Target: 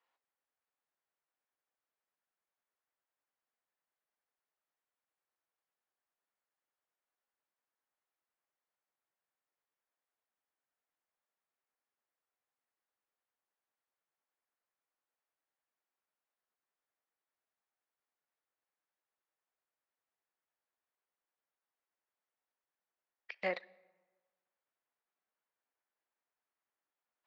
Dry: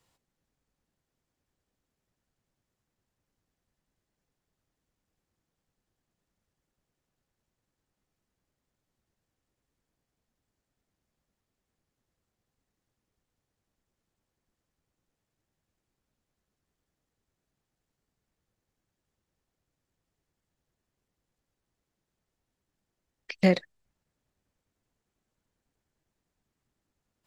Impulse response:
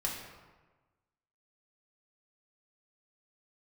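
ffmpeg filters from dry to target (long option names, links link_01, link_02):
-filter_complex "[0:a]highpass=780,lowpass=2200,asplit=2[link_01][link_02];[1:a]atrim=start_sample=2205,adelay=37[link_03];[link_02][link_03]afir=irnorm=-1:irlink=0,volume=-25dB[link_04];[link_01][link_04]amix=inputs=2:normalize=0,volume=-4dB"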